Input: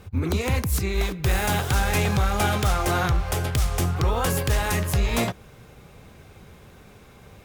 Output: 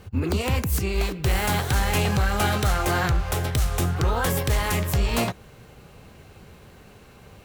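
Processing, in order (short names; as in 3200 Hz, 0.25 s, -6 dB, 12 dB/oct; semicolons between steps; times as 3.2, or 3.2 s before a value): formant shift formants +2 st; hard clip -15.5 dBFS, distortion -29 dB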